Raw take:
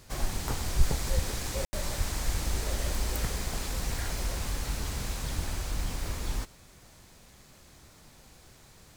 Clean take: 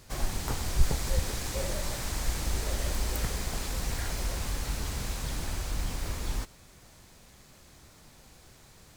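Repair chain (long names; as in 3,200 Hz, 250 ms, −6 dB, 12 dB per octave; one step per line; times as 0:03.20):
0:01.97–0:02.09: high-pass filter 140 Hz 24 dB per octave
0:02.31–0:02.43: high-pass filter 140 Hz 24 dB per octave
0:05.35–0:05.47: high-pass filter 140 Hz 24 dB per octave
ambience match 0:01.65–0:01.73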